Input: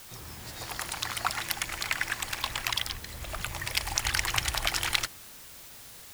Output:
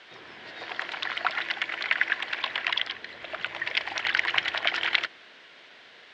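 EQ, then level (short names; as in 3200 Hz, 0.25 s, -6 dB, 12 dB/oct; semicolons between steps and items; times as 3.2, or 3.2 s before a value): speaker cabinet 490–3100 Hz, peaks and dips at 540 Hz -4 dB, 850 Hz -9 dB, 1200 Hz -9 dB, 2500 Hz -4 dB; +8.5 dB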